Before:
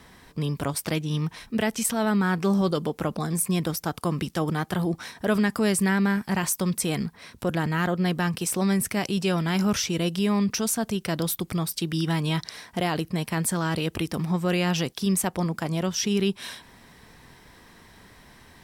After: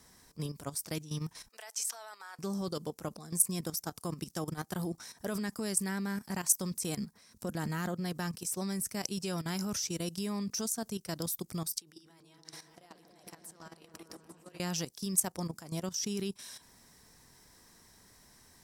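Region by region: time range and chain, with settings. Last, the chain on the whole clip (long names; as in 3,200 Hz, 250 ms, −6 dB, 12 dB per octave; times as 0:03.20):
0:01.49–0:02.39: high-pass filter 670 Hz 24 dB per octave + parametric band 14,000 Hz −4.5 dB 0.87 octaves
0:06.92–0:08.00: de-essing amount 30% + parametric band 210 Hz +7 dB 0.26 octaves
0:11.78–0:14.60: downward compressor 8 to 1, threshold −34 dBFS + bass and treble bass −14 dB, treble −5 dB + echo whose low-pass opens from repeat to repeat 141 ms, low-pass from 400 Hz, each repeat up 1 octave, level 0 dB
whole clip: high shelf with overshoot 4,300 Hz +10 dB, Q 1.5; output level in coarse steps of 13 dB; level −8.5 dB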